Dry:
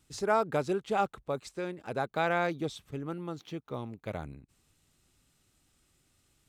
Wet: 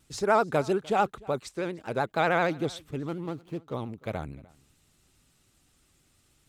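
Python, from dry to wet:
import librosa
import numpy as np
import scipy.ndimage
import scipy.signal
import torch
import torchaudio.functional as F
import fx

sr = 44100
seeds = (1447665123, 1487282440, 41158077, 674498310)

y = fx.median_filter(x, sr, points=25, at=(3.07, 3.74))
y = y + 10.0 ** (-23.5 / 20.0) * np.pad(y, (int(300 * sr / 1000.0), 0))[:len(y)]
y = fx.vibrato(y, sr, rate_hz=13.0, depth_cents=88.0)
y = y * 10.0 ** (4.0 / 20.0)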